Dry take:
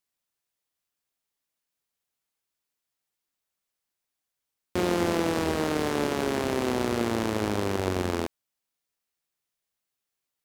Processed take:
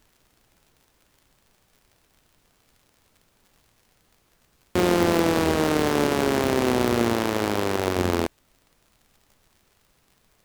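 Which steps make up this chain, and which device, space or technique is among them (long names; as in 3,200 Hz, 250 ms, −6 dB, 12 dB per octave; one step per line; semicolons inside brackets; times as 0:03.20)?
0:07.13–0:07.98: low-shelf EQ 230 Hz −7.5 dB
record under a worn stylus (stylus tracing distortion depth 0.11 ms; surface crackle; pink noise bed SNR 38 dB)
level +5 dB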